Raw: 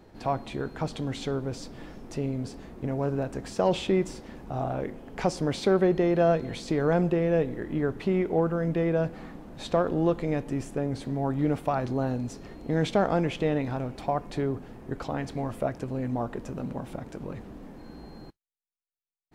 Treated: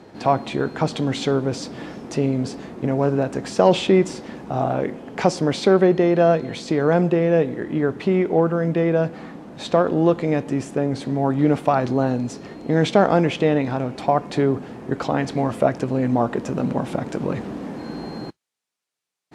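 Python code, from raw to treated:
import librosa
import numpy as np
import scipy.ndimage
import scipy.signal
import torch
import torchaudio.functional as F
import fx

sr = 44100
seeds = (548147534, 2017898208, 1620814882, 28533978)

p1 = scipy.signal.sosfilt(scipy.signal.butter(2, 9100.0, 'lowpass', fs=sr, output='sos'), x)
p2 = fx.rider(p1, sr, range_db=10, speed_s=2.0)
p3 = p1 + (p2 * 10.0 ** (1.5 / 20.0))
p4 = scipy.signal.sosfilt(scipy.signal.butter(2, 130.0, 'highpass', fs=sr, output='sos'), p3)
y = p4 * 10.0 ** (1.0 / 20.0)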